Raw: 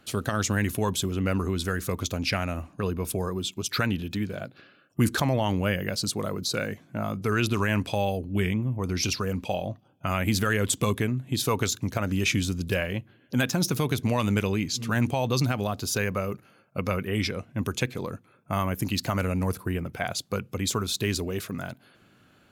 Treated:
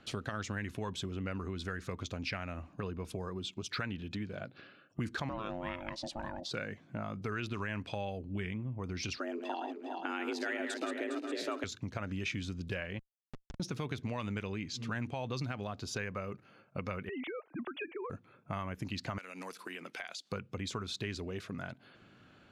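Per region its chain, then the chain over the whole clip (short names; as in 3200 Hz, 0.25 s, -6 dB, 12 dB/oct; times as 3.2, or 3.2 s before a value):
5.29–6.51 high shelf 8000 Hz -7 dB + ring modulator 440 Hz
9.17–11.64 regenerating reverse delay 0.204 s, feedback 63%, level -6.5 dB + frequency shift +160 Hz
12.99–13.6 HPF 63 Hz 6 dB/oct + compressor 16:1, threshold -33 dBFS + Schmitt trigger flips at -30.5 dBFS
17.09–18.1 sine-wave speech + compressor, threshold -30 dBFS
19.18–20.32 HPF 230 Hz 24 dB/oct + tilt shelf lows -9 dB, about 1400 Hz + compressor 5:1, threshold -35 dBFS
whole clip: LPF 5100 Hz 12 dB/oct; dynamic EQ 1800 Hz, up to +4 dB, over -41 dBFS, Q 1.2; compressor 2.5:1, threshold -39 dBFS; gain -1 dB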